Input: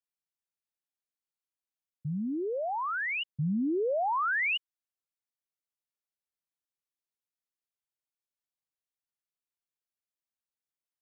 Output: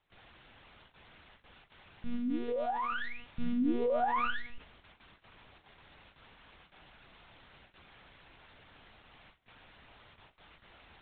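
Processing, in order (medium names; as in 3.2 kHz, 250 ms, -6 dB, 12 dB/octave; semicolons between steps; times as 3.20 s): tracing distortion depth 0.3 ms; treble shelf 2.5 kHz -10 dB; gated-style reverb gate 160 ms falling, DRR 9 dB; added noise white -49 dBFS; distance through air 180 m; gate with hold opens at -47 dBFS; monotone LPC vocoder at 8 kHz 240 Hz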